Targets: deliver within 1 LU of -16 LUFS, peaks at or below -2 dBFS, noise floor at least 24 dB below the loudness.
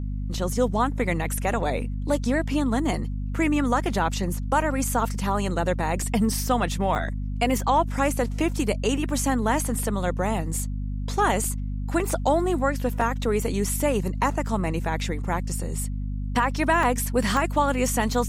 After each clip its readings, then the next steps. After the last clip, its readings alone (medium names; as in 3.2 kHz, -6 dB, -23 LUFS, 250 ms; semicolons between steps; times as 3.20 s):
dropouts 8; longest dropout 2.5 ms; hum 50 Hz; highest harmonic 250 Hz; hum level -26 dBFS; loudness -25.0 LUFS; peak level -9.0 dBFS; loudness target -16.0 LUFS
-> interpolate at 0.34/6.02/6.95/8.49/11.44/13.01/16.83/17.37 s, 2.5 ms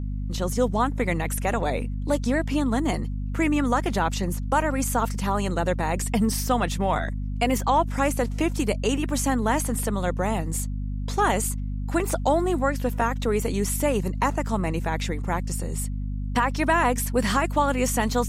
dropouts 0; hum 50 Hz; highest harmonic 250 Hz; hum level -26 dBFS
-> hum notches 50/100/150/200/250 Hz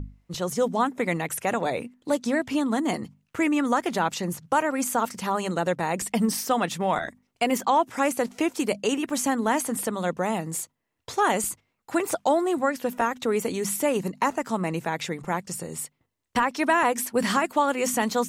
hum not found; loudness -26.0 LUFS; peak level -9.5 dBFS; loudness target -16.0 LUFS
-> trim +10 dB; peak limiter -2 dBFS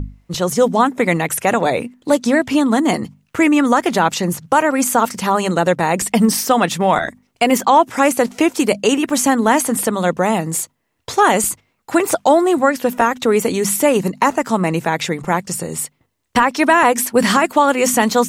loudness -16.0 LUFS; peak level -2.0 dBFS; noise floor -66 dBFS